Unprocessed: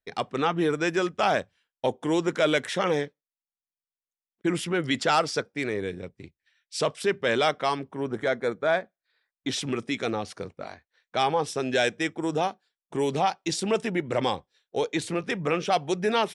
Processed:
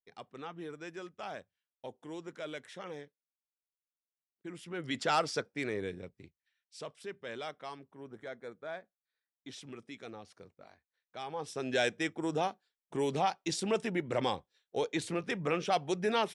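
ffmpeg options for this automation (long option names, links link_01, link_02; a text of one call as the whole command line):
ffmpeg -i in.wav -af "volume=5.5dB,afade=type=in:start_time=4.61:duration=0.53:silence=0.237137,afade=type=out:start_time=5.85:duration=0.92:silence=0.266073,afade=type=in:start_time=11.26:duration=0.53:silence=0.251189" out.wav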